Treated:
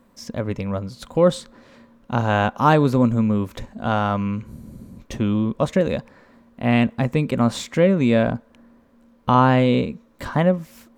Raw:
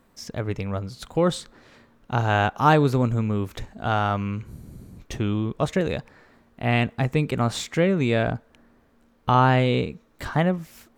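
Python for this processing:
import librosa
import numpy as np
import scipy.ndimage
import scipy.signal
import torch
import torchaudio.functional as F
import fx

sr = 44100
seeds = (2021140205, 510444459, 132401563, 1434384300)

y = fx.small_body(x, sr, hz=(230.0, 540.0, 1000.0), ring_ms=45, db=9)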